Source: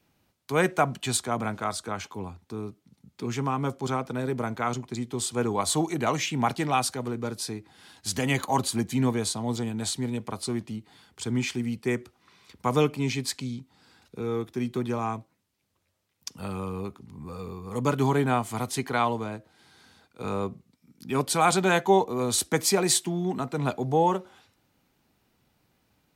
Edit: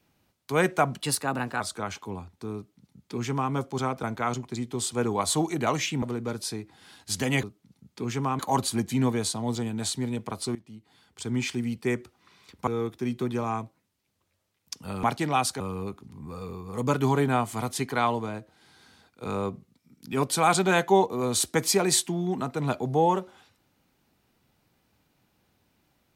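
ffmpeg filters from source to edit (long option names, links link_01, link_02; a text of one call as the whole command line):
ffmpeg -i in.wav -filter_complex "[0:a]asplit=11[link_01][link_02][link_03][link_04][link_05][link_06][link_07][link_08][link_09][link_10][link_11];[link_01]atrim=end=1.024[link_12];[link_02]atrim=start=1.02:end=1.69,asetpts=PTS-STARTPTS,asetrate=50715,aresample=44100,atrim=end_sample=25693,asetpts=PTS-STARTPTS[link_13];[link_03]atrim=start=1.686:end=4.122[link_14];[link_04]atrim=start=4.428:end=6.422[link_15];[link_05]atrim=start=6.988:end=8.402[link_16];[link_06]atrim=start=2.648:end=3.612[link_17];[link_07]atrim=start=8.398:end=10.56,asetpts=PTS-STARTPTS,afade=type=out:start_time=2.158:duration=0.004:curve=hsin:silence=0.141254[link_18];[link_08]atrim=start=10.56:end=12.682,asetpts=PTS-STARTPTS,afade=type=in:duration=0.94:silence=0.141254[link_19];[link_09]atrim=start=14.218:end=16.582[link_20];[link_10]atrim=start=6.418:end=6.992[link_21];[link_11]atrim=start=16.578[link_22];[link_12][link_13]acrossfade=duration=0.004:curve1=hsin:curve2=hsin[link_23];[link_23][link_14]acrossfade=duration=0.004:curve1=hsin:curve2=hsin[link_24];[link_24][link_15]acrossfade=duration=0.004:curve1=hsin:curve2=hsin[link_25];[link_25][link_16]acrossfade=duration=0.004:curve1=hsin:curve2=hsin[link_26];[link_26][link_17]acrossfade=duration=0.004:curve1=hsin:curve2=hsin[link_27];[link_18][link_19]concat=n=2:v=0:a=1[link_28];[link_27][link_28]acrossfade=duration=0.004:curve1=hsin:curve2=hsin[link_29];[link_29][link_20]acrossfade=duration=0.004:curve1=hsin:curve2=hsin[link_30];[link_30][link_21]acrossfade=duration=0.004:curve1=hsin:curve2=hsin[link_31];[link_31][link_22]acrossfade=duration=0.004:curve1=hsin:curve2=hsin" out.wav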